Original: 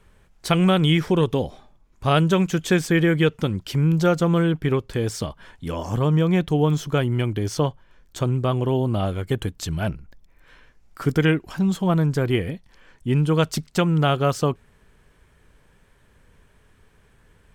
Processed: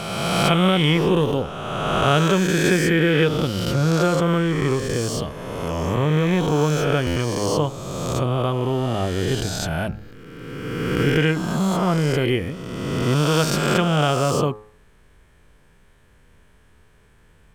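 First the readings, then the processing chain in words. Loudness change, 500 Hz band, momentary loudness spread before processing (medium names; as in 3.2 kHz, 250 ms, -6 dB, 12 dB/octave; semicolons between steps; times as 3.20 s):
+1.0 dB, +2.5 dB, 10 LU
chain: reverse spectral sustain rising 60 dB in 2.08 s; de-hum 106.2 Hz, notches 16; buffer glitch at 7.06 s, samples 512, times 8; trim -1.5 dB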